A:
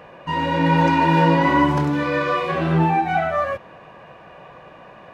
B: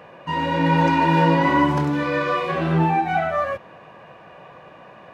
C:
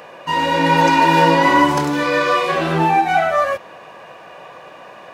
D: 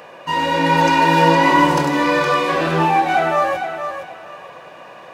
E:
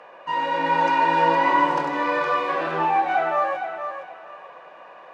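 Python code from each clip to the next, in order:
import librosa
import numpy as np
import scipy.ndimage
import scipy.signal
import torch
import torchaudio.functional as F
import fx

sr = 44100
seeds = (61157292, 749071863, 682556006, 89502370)

y1 = scipy.signal.sosfilt(scipy.signal.butter(2, 73.0, 'highpass', fs=sr, output='sos'), x)
y1 = y1 * 10.0 ** (-1.0 / 20.0)
y2 = fx.bass_treble(y1, sr, bass_db=-10, treble_db=10)
y2 = y2 * 10.0 ** (6.0 / 20.0)
y3 = fx.echo_feedback(y2, sr, ms=464, feedback_pct=25, wet_db=-8.0)
y3 = y3 * 10.0 ** (-1.0 / 20.0)
y4 = fx.bandpass_q(y3, sr, hz=1000.0, q=0.66)
y4 = y4 * 10.0 ** (-4.0 / 20.0)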